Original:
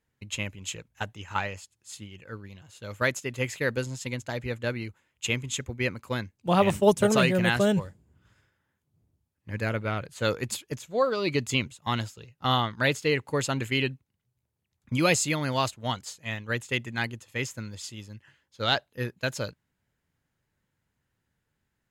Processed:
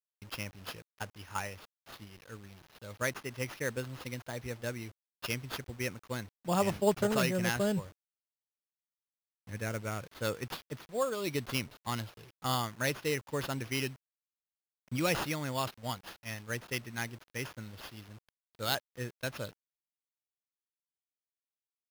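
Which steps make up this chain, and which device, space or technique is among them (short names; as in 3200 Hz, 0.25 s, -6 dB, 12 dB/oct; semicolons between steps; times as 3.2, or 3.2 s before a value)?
early 8-bit sampler (sample-rate reducer 8000 Hz, jitter 0%; bit-crush 8-bit); gain -7.5 dB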